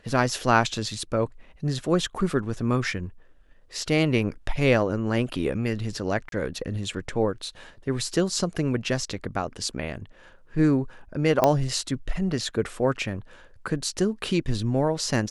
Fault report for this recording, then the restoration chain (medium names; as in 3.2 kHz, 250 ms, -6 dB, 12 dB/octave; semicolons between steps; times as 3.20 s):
6.29–6.32 s: dropout 32 ms
11.44 s: pop -6 dBFS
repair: de-click; interpolate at 6.29 s, 32 ms